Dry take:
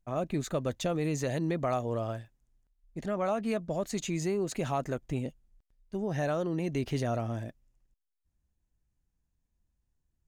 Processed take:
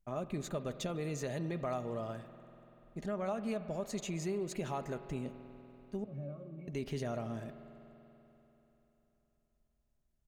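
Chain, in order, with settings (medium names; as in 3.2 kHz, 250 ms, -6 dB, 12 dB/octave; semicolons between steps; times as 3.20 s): comb 4.9 ms, depth 31%; compression 1.5:1, threshold -38 dBFS, peak gain reduction 5.5 dB; 6.04–6.68 s: pitch-class resonator C#, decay 0.14 s; spring tank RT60 3.6 s, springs 48 ms, chirp 30 ms, DRR 11 dB; trim -3 dB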